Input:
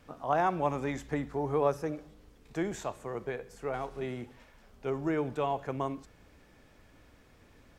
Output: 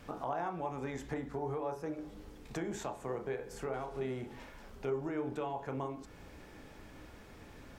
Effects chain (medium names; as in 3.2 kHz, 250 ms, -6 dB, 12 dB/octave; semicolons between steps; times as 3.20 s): compression 5:1, threshold -43 dBFS, peak gain reduction 18.5 dB; on a send: reverberation RT60 0.35 s, pre-delay 21 ms, DRR 6 dB; on the sum: trim +5.5 dB